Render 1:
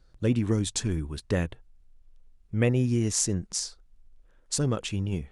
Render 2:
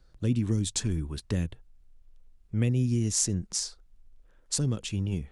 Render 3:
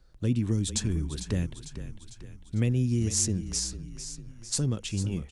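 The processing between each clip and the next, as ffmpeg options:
ffmpeg -i in.wav -filter_complex "[0:a]acrossover=split=300|3000[link_01][link_02][link_03];[link_02]acompressor=threshold=-41dB:ratio=6[link_04];[link_01][link_04][link_03]amix=inputs=3:normalize=0" out.wav
ffmpeg -i in.wav -filter_complex "[0:a]asplit=7[link_01][link_02][link_03][link_04][link_05][link_06][link_07];[link_02]adelay=450,afreqshift=-32,volume=-11dB[link_08];[link_03]adelay=900,afreqshift=-64,volume=-16dB[link_09];[link_04]adelay=1350,afreqshift=-96,volume=-21.1dB[link_10];[link_05]adelay=1800,afreqshift=-128,volume=-26.1dB[link_11];[link_06]adelay=2250,afreqshift=-160,volume=-31.1dB[link_12];[link_07]adelay=2700,afreqshift=-192,volume=-36.2dB[link_13];[link_01][link_08][link_09][link_10][link_11][link_12][link_13]amix=inputs=7:normalize=0" out.wav

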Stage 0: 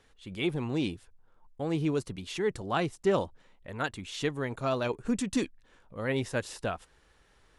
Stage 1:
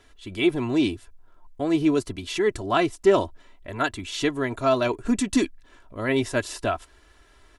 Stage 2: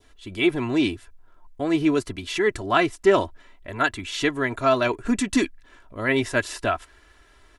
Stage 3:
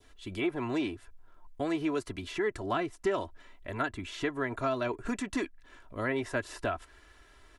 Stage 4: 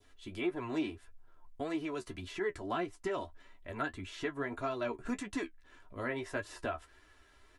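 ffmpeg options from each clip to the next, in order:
ffmpeg -i in.wav -af "aecho=1:1:3:0.63,volume=6dB" out.wav
ffmpeg -i in.wav -af "adynamicequalizer=threshold=0.01:dfrequency=1800:dqfactor=1.1:tfrequency=1800:tqfactor=1.1:attack=5:release=100:ratio=0.375:range=3:mode=boostabove:tftype=bell" out.wav
ffmpeg -i in.wav -filter_complex "[0:a]acrossover=split=450|1700[link_01][link_02][link_03];[link_01]acompressor=threshold=-32dB:ratio=4[link_04];[link_02]acompressor=threshold=-29dB:ratio=4[link_05];[link_03]acompressor=threshold=-42dB:ratio=4[link_06];[link_04][link_05][link_06]amix=inputs=3:normalize=0,volume=-3dB" out.wav
ffmpeg -i in.wav -af "flanger=delay=9.4:depth=4.6:regen=34:speed=1.7:shape=triangular,volume=-1dB" out.wav

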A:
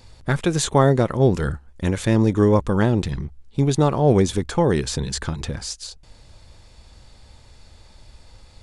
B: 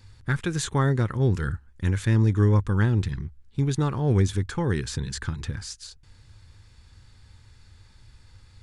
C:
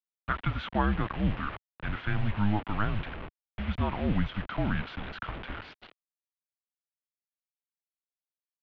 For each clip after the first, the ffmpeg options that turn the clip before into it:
ffmpeg -i in.wav -af "equalizer=frequency=100:width_type=o:width=0.67:gain=10,equalizer=frequency=630:width_type=o:width=0.67:gain=-11,equalizer=frequency=1600:width_type=o:width=0.67:gain=6,volume=-7dB" out.wav
ffmpeg -i in.wav -af "acrusher=bits=5:mix=0:aa=0.000001,highpass=frequency=200:width_type=q:width=0.5412,highpass=frequency=200:width_type=q:width=1.307,lowpass=frequency=3300:width_type=q:width=0.5176,lowpass=frequency=3300:width_type=q:width=0.7071,lowpass=frequency=3300:width_type=q:width=1.932,afreqshift=-210" out.wav

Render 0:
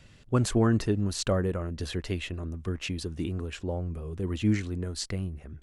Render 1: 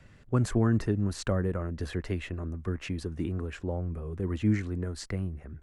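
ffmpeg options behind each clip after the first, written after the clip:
ffmpeg -i in.wav -filter_complex "[0:a]highshelf=frequency=2400:width_type=q:width=1.5:gain=-6.5,acrossover=split=260|3000[link_01][link_02][link_03];[link_02]acompressor=threshold=-32dB:ratio=2[link_04];[link_01][link_04][link_03]amix=inputs=3:normalize=0" out.wav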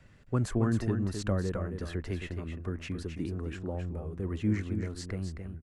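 ffmpeg -i in.wav -af "aecho=1:1:266:0.422,volume=-3dB" out.wav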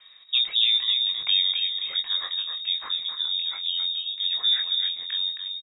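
ffmpeg -i in.wav -filter_complex "[0:a]asplit=2[link_01][link_02];[link_02]adelay=22,volume=-6dB[link_03];[link_01][link_03]amix=inputs=2:normalize=0,lowpass=frequency=3200:width_type=q:width=0.5098,lowpass=frequency=3200:width_type=q:width=0.6013,lowpass=frequency=3200:width_type=q:width=0.9,lowpass=frequency=3200:width_type=q:width=2.563,afreqshift=-3800,volume=5dB" out.wav

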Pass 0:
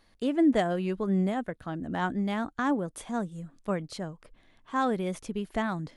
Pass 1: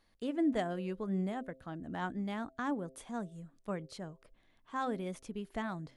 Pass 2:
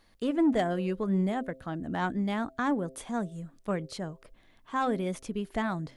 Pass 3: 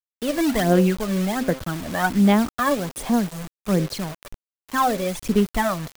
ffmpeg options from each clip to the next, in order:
ffmpeg -i in.wav -af "bandreject=frequency=131.6:width_type=h:width=4,bandreject=frequency=263.2:width_type=h:width=4,bandreject=frequency=394.8:width_type=h:width=4,bandreject=frequency=526.4:width_type=h:width=4,bandreject=frequency=658:width_type=h:width=4,volume=-8dB" out.wav
ffmpeg -i in.wav -af "asoftclip=type=tanh:threshold=-25.5dB,volume=8dB" out.wav
ffmpeg -i in.wav -filter_complex "[0:a]acrossover=split=210[link_01][link_02];[link_02]acrusher=bits=3:mode=log:mix=0:aa=0.000001[link_03];[link_01][link_03]amix=inputs=2:normalize=0,aphaser=in_gain=1:out_gain=1:delay=1.8:decay=0.64:speed=1.3:type=sinusoidal,acrusher=bits=6:mix=0:aa=0.000001,volume=6.5dB" out.wav

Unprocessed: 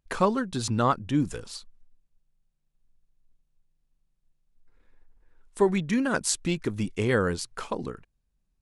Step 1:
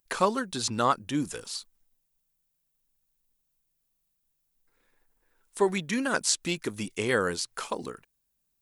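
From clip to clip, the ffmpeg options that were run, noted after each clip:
ffmpeg -i in.wav -filter_complex "[0:a]aemphasis=mode=production:type=bsi,acrossover=split=6400[link_01][link_02];[link_02]acompressor=threshold=-41dB:ratio=4:attack=1:release=60[link_03];[link_01][link_03]amix=inputs=2:normalize=0" out.wav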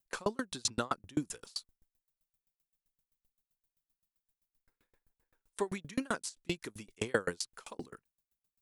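ffmpeg -i in.wav -filter_complex "[0:a]acrossover=split=470[link_01][link_02];[link_02]alimiter=limit=-16dB:level=0:latency=1:release=399[link_03];[link_01][link_03]amix=inputs=2:normalize=0,aeval=exprs='val(0)*pow(10,-36*if(lt(mod(7.7*n/s,1),2*abs(7.7)/1000),1-mod(7.7*n/s,1)/(2*abs(7.7)/1000),(mod(7.7*n/s,1)-2*abs(7.7)/1000)/(1-2*abs(7.7)/1000))/20)':channel_layout=same,volume=1.5dB" out.wav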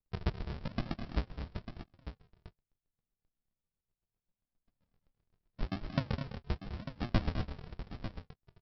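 ffmpeg -i in.wav -af "aresample=11025,acrusher=samples=32:mix=1:aa=0.000001:lfo=1:lforange=19.2:lforate=0.82,aresample=44100,aecho=1:1:206|234|897:0.266|0.335|0.282,volume=1dB" out.wav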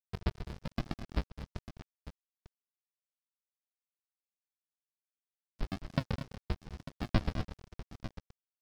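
ffmpeg -i in.wav -af "aeval=exprs='sgn(val(0))*max(abs(val(0))-0.00668,0)':channel_layout=same,volume=1.5dB" out.wav

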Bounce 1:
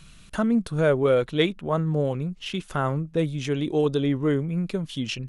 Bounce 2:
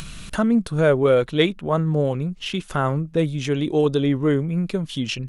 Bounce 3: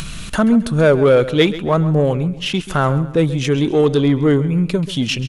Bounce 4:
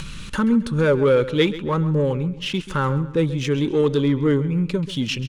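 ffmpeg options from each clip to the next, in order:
ffmpeg -i in.wav -af "acompressor=mode=upward:threshold=-29dB:ratio=2.5,volume=3.5dB" out.wav
ffmpeg -i in.wav -filter_complex "[0:a]asplit=2[link_01][link_02];[link_02]asoftclip=type=tanh:threshold=-21dB,volume=-3dB[link_03];[link_01][link_03]amix=inputs=2:normalize=0,aecho=1:1:134|268|402:0.178|0.064|0.023,volume=2.5dB" out.wav
ffmpeg -i in.wav -af "adynamicsmooth=sensitivity=5:basefreq=7500,asuperstop=centerf=690:order=8:qfactor=3.6,volume=-4.5dB" out.wav

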